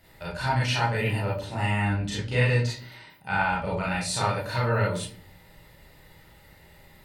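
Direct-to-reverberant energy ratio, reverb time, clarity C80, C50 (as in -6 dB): -6.5 dB, 0.45 s, 10.0 dB, 3.5 dB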